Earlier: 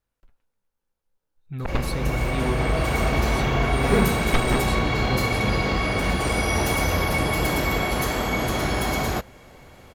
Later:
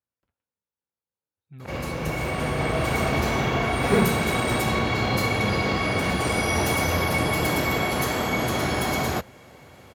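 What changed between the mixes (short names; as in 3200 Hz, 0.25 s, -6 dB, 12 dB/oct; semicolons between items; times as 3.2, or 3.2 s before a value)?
speech -11.0 dB; master: add HPF 74 Hz 24 dB/oct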